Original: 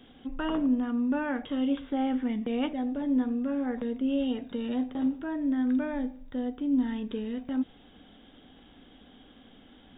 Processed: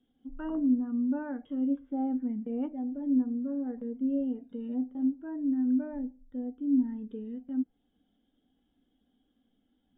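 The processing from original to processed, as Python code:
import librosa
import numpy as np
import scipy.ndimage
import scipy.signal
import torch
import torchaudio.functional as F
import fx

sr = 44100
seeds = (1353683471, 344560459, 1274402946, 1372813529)

y = fx.env_lowpass_down(x, sr, base_hz=1900.0, full_db=-26.5)
y = fx.spectral_expand(y, sr, expansion=1.5)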